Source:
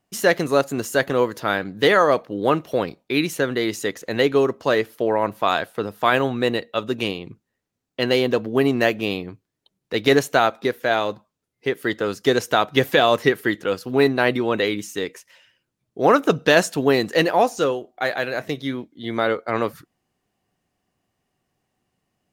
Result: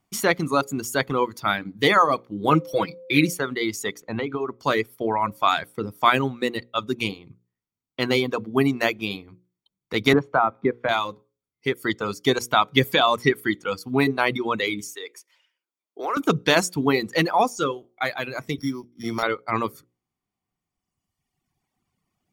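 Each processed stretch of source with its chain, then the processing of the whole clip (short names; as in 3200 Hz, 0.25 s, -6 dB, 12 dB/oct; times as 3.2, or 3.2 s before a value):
2.5–3.32 comb 6.2 ms, depth 77% + whine 520 Hz -23 dBFS
4–4.59 LPF 2100 Hz 6 dB/oct + compressor, threshold -19 dBFS
10.13–10.89 LPF 1500 Hz + three-band squash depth 70%
14.95–16.17 HPF 360 Hz 24 dB/oct + compressor 2.5:1, threshold -26 dBFS
18.58–19.23 sample sorter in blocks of 8 samples + high shelf 4000 Hz -12 dB + three-band squash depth 70%
whole clip: notches 60/120/180/240/300/360/420/480/540 Hz; reverb removal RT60 1.9 s; comb 0.9 ms, depth 47%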